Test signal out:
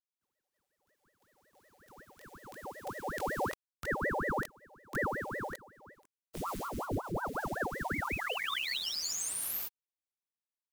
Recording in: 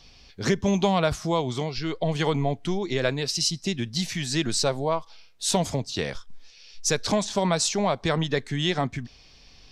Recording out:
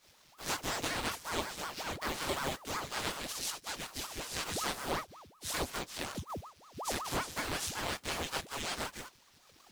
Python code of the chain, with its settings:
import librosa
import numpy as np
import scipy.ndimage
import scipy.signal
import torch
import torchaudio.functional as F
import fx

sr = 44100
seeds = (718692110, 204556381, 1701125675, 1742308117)

y = fx.envelope_flatten(x, sr, power=0.3)
y = fx.chorus_voices(y, sr, voices=4, hz=0.63, base_ms=21, depth_ms=2.5, mix_pct=55)
y = fx.ring_lfo(y, sr, carrier_hz=680.0, swing_pct=90, hz=5.4)
y = y * 10.0 ** (-6.5 / 20.0)